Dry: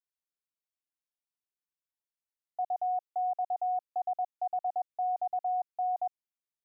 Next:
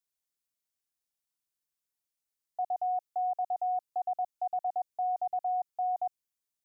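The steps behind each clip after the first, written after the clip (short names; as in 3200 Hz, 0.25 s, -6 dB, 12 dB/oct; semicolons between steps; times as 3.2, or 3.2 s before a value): tone controls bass +3 dB, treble +7 dB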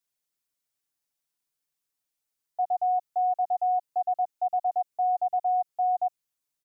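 comb 7 ms; gain +2 dB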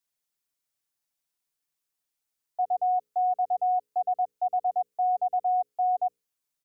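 notches 60/120/180/240/300/360/420/480/540 Hz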